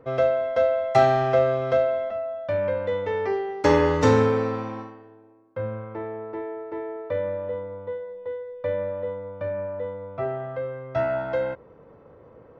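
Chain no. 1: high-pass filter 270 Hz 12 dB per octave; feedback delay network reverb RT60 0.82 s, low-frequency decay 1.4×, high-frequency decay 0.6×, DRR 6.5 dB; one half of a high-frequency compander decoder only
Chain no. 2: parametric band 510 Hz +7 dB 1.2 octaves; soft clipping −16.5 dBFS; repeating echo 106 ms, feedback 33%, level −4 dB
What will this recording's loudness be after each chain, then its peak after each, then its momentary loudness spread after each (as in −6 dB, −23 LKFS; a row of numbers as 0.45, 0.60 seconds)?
−24.0, −22.5 LKFS; −5.5, −11.5 dBFS; 15, 11 LU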